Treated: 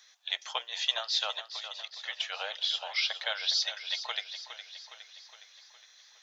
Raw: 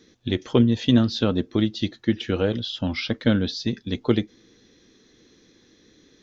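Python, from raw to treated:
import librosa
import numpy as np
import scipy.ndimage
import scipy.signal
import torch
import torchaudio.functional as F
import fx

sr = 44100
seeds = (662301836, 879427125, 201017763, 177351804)

y = scipy.signal.sosfilt(scipy.signal.butter(8, 690.0, 'highpass', fs=sr, output='sos'), x)
y = fx.high_shelf(y, sr, hz=5500.0, db=6.0)
y = fx.comb(y, sr, ms=3.2, depth=0.84, at=(3.46, 3.98))
y = fx.dynamic_eq(y, sr, hz=1300.0, q=1.4, threshold_db=-46.0, ratio=4.0, max_db=-5)
y = fx.level_steps(y, sr, step_db=15, at=(1.48, 1.99))
y = fx.echo_feedback(y, sr, ms=413, feedback_pct=56, wet_db=-11.0)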